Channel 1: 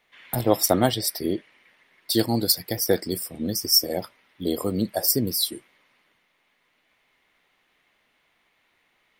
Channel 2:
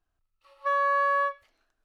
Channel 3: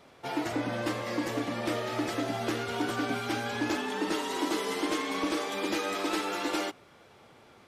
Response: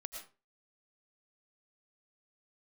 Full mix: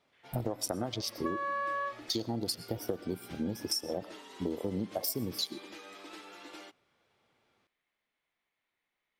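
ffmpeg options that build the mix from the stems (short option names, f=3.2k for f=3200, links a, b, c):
-filter_complex "[0:a]bandreject=f=2.8k:w=22,afwtdn=0.0316,acompressor=threshold=-20dB:ratio=6,volume=-3dB,asplit=2[a][b];[b]volume=-12dB[c];[1:a]acompressor=threshold=-29dB:ratio=6,adelay=600,volume=1.5dB[d];[2:a]equalizer=f=3.2k:t=o:w=2.1:g=4.5,volume=-19dB[e];[3:a]atrim=start_sample=2205[f];[c][f]afir=irnorm=-1:irlink=0[g];[a][d][e][g]amix=inputs=4:normalize=0,acompressor=threshold=-30dB:ratio=6"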